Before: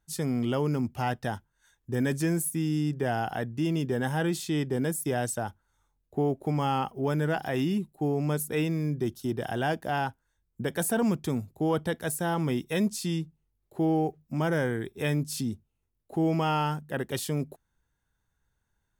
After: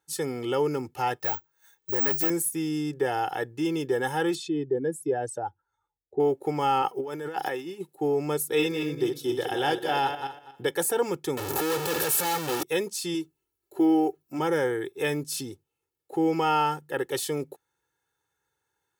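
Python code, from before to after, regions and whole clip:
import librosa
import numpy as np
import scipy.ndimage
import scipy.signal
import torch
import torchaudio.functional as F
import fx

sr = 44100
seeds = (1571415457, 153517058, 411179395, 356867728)

y = fx.chain(x, sr, fx.overload_stage(gain_db=28.0),
    fx.resample_bad(factor=2, down='none', up='zero_stuff'), at=(1.2, 2.3))
y = fx.chain(y, sr, fx.spec_expand(power=1.6),
    fx.air_absorb(metres=62.0), at=(4.35, 6.2))
y = fx.chain(y, sr, fx.highpass(hz=160.0, slope=12),
    fx.over_compress(threshold_db=-32.0, ratio=-0.5), at=(6.82, 7.95))
y = fx.chain(y, sr, fx.reverse_delay_fb(ms=120, feedback_pct=43, wet_db=-6),
    fx.peak_eq(hz=3600.0, db=7.5, octaves=0.64), at=(8.47, 10.71))
y = fx.chain(y, sr, fx.clip_1bit(),
    fx.peak_eq(hz=13000.0, db=6.5, octaves=0.35),
    fx.notch(hz=2100.0, q=11.0), at=(11.37, 12.63))
y = fx.chain(y, sr, fx.high_shelf(hz=10000.0, db=5.0),
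    fx.comb(ms=3.0, depth=0.61), at=(13.14, 14.39))
y = scipy.signal.sosfilt(scipy.signal.butter(2, 220.0, 'highpass', fs=sr, output='sos'), y)
y = y + 0.82 * np.pad(y, (int(2.3 * sr / 1000.0), 0))[:len(y)]
y = F.gain(torch.from_numpy(y), 1.0).numpy()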